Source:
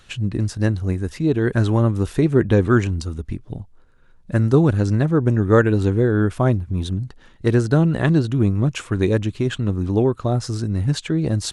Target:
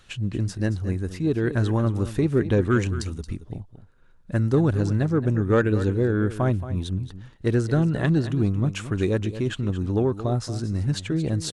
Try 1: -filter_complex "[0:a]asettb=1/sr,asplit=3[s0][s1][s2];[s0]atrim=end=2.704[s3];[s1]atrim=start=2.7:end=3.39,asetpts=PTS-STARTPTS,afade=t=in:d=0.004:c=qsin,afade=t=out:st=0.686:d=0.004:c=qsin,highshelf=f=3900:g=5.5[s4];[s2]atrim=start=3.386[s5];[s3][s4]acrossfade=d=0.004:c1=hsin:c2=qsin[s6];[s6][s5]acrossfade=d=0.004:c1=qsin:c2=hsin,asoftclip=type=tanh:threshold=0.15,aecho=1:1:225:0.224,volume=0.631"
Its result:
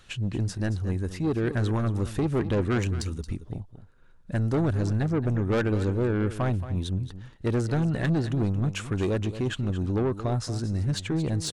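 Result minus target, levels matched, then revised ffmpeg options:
saturation: distortion +13 dB
-filter_complex "[0:a]asettb=1/sr,asplit=3[s0][s1][s2];[s0]atrim=end=2.704[s3];[s1]atrim=start=2.7:end=3.39,asetpts=PTS-STARTPTS,afade=t=in:d=0.004:c=qsin,afade=t=out:st=0.686:d=0.004:c=qsin,highshelf=f=3900:g=5.5[s4];[s2]atrim=start=3.386[s5];[s3][s4]acrossfade=d=0.004:c1=hsin:c2=qsin[s6];[s6][s5]acrossfade=d=0.004:c1=qsin:c2=hsin,asoftclip=type=tanh:threshold=0.531,aecho=1:1:225:0.224,volume=0.631"

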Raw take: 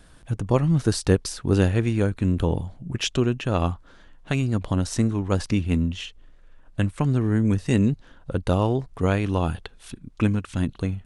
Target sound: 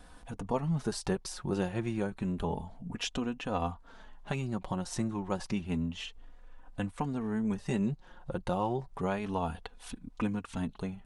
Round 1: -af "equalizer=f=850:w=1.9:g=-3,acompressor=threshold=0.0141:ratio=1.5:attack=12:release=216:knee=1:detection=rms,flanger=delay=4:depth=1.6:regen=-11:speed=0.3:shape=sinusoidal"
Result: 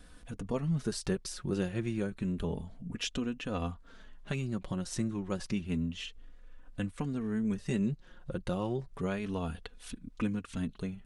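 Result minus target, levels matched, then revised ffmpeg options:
1 kHz band -7.0 dB
-af "equalizer=f=850:w=1.9:g=9,acompressor=threshold=0.0141:ratio=1.5:attack=12:release=216:knee=1:detection=rms,flanger=delay=4:depth=1.6:regen=-11:speed=0.3:shape=sinusoidal"

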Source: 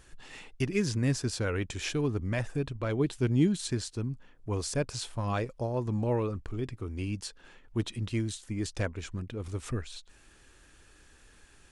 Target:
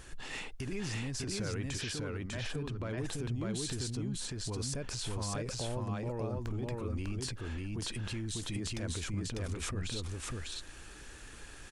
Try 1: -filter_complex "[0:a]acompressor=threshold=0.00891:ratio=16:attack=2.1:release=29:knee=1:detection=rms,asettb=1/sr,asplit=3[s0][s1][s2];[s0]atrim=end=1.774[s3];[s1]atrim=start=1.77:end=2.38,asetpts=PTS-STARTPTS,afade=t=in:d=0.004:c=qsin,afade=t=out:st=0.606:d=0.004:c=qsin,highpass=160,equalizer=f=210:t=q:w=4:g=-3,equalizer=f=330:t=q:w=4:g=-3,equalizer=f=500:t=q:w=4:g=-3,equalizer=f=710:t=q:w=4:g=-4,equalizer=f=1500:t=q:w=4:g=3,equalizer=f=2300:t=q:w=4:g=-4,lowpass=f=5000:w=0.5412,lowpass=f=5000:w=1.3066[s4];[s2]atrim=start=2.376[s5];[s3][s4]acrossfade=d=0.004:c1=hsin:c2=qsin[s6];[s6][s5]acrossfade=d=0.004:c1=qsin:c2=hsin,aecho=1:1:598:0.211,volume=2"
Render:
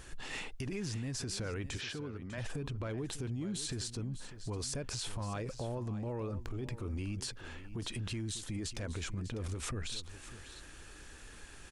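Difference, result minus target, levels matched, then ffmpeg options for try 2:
echo-to-direct -12 dB
-filter_complex "[0:a]acompressor=threshold=0.00891:ratio=16:attack=2.1:release=29:knee=1:detection=rms,asettb=1/sr,asplit=3[s0][s1][s2];[s0]atrim=end=1.774[s3];[s1]atrim=start=1.77:end=2.38,asetpts=PTS-STARTPTS,afade=t=in:d=0.004:c=qsin,afade=t=out:st=0.606:d=0.004:c=qsin,highpass=160,equalizer=f=210:t=q:w=4:g=-3,equalizer=f=330:t=q:w=4:g=-3,equalizer=f=500:t=q:w=4:g=-3,equalizer=f=710:t=q:w=4:g=-4,equalizer=f=1500:t=q:w=4:g=3,equalizer=f=2300:t=q:w=4:g=-4,lowpass=f=5000:w=0.5412,lowpass=f=5000:w=1.3066[s4];[s2]atrim=start=2.376[s5];[s3][s4]acrossfade=d=0.004:c1=hsin:c2=qsin[s6];[s6][s5]acrossfade=d=0.004:c1=qsin:c2=hsin,aecho=1:1:598:0.841,volume=2"

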